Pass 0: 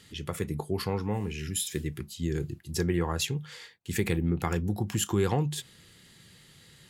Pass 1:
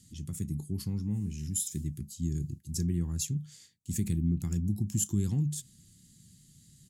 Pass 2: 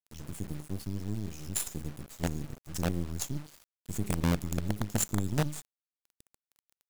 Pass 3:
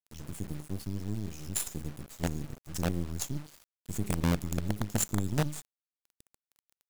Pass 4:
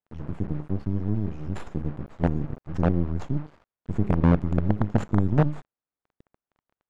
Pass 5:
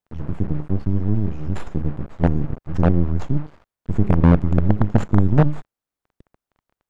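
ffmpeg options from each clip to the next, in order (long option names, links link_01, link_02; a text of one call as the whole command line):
ffmpeg -i in.wav -af "firequalizer=gain_entry='entry(240,0);entry(470,-25);entry(900,-26);entry(6700,2);entry(14000,-4)':delay=0.05:min_phase=1" out.wav
ffmpeg -i in.wav -af "acrusher=bits=5:dc=4:mix=0:aa=0.000001" out.wav
ffmpeg -i in.wav -af anull out.wav
ffmpeg -i in.wav -af "lowpass=1300,volume=9dB" out.wav
ffmpeg -i in.wav -af "lowshelf=frequency=73:gain=6,volume=4.5dB" out.wav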